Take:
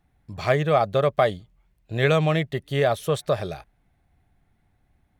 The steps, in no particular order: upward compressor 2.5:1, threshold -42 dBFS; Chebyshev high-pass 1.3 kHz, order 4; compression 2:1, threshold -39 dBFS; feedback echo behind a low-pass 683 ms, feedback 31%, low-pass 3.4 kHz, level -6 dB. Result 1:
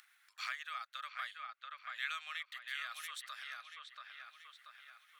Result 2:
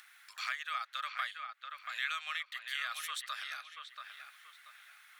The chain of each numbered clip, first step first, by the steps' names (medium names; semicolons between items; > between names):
upward compressor > feedback echo behind a low-pass > compression > Chebyshev high-pass; Chebyshev high-pass > upward compressor > compression > feedback echo behind a low-pass